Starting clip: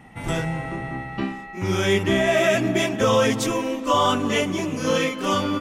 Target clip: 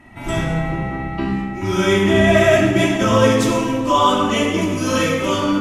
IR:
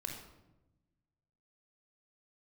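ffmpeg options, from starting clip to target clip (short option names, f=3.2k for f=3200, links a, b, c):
-filter_complex "[0:a]asettb=1/sr,asplit=3[a][b][c];[a]atrim=end=4.614[d];[b]atrim=start=4.61:end=5.16,asetpts=PTS-STARTPTS,afade=t=in:d=0.004:c=qsin,afade=t=out:st=0.546:d=0.004:c=qsin,highshelf=f=6.2k:g=7[e];[c]atrim=start=5.156[f];[d][e]acrossfade=d=0.004:c1=hsin:c2=qsin[g];[g][f]acrossfade=d=0.004:c1=qsin:c2=hsin[h];[1:a]atrim=start_sample=2205,asetrate=27342,aresample=44100[i];[h][i]afir=irnorm=-1:irlink=0,volume=1.5dB"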